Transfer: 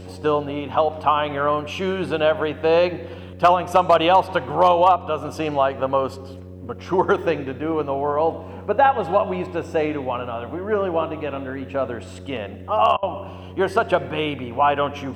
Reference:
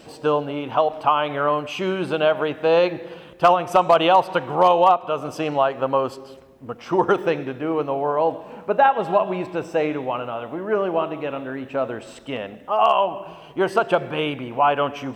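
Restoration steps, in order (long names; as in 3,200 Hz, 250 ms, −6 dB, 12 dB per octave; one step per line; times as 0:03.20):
hum removal 91.8 Hz, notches 6
repair the gap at 0:12.97, 56 ms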